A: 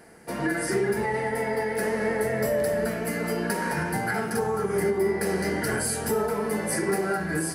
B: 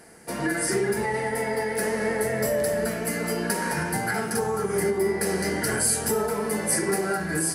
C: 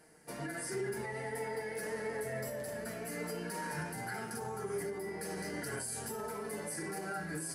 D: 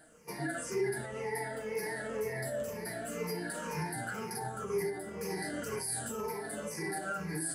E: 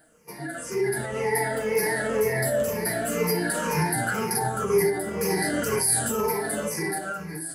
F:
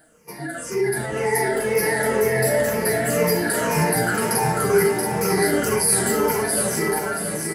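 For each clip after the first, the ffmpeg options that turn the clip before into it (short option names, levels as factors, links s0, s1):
-af "equalizer=f=8200:t=o:w=1.8:g=7"
-af "alimiter=limit=0.112:level=0:latency=1:release=16,flanger=delay=6.4:depth=1.5:regen=39:speed=0.57:shape=sinusoidal,volume=0.398"
-af "afftfilt=real='re*pow(10,14/40*sin(2*PI*(0.81*log(max(b,1)*sr/1024/100)/log(2)-(-2)*(pts-256)/sr)))':imag='im*pow(10,14/40*sin(2*PI*(0.81*log(max(b,1)*sr/1024/100)/log(2)-(-2)*(pts-256)/sr)))':win_size=1024:overlap=0.75"
-af "dynaudnorm=f=200:g=9:m=3.98,aexciter=amount=2:drive=2.8:freq=11000"
-af "aecho=1:1:677|1354|2031|2708|3385:0.562|0.247|0.109|0.0479|0.0211,volume=1.5"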